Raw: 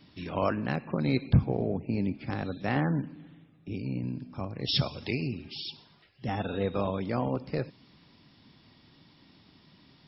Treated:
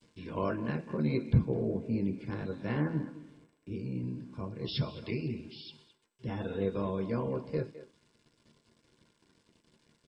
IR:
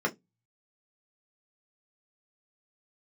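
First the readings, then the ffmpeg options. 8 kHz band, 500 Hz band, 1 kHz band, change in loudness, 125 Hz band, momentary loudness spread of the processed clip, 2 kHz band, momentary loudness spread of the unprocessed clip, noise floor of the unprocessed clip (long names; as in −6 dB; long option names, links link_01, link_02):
can't be measured, −2.5 dB, −7.0 dB, −3.0 dB, −3.0 dB, 13 LU, −7.0 dB, 11 LU, −60 dBFS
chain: -filter_complex "[0:a]aeval=exprs='val(0)*gte(abs(val(0)),0.00224)':channel_layout=same,acrossover=split=5000[link_01][link_02];[link_02]acompressor=threshold=-60dB:ratio=4:attack=1:release=60[link_03];[link_01][link_03]amix=inputs=2:normalize=0,asplit=2[link_04][link_05];[link_05]adelay=210,highpass=300,lowpass=3400,asoftclip=type=hard:threshold=-22dB,volume=-13dB[link_06];[link_04][link_06]amix=inputs=2:normalize=0,asplit=2[link_07][link_08];[1:a]atrim=start_sample=2205[link_09];[link_08][link_09]afir=irnorm=-1:irlink=0,volume=-10.5dB[link_10];[link_07][link_10]amix=inputs=2:normalize=0,volume=-6dB" -ar 32000 -c:a mp2 -b:a 192k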